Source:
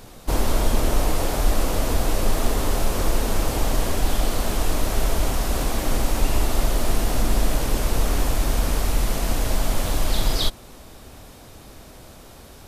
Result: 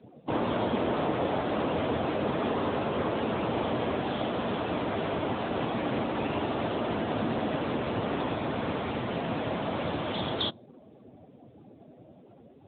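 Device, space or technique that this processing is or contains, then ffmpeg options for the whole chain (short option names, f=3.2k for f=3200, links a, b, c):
mobile call with aggressive noise cancelling: -af "highpass=120,afftdn=nr=19:nf=-40" -ar 8000 -c:a libopencore_amrnb -b:a 10200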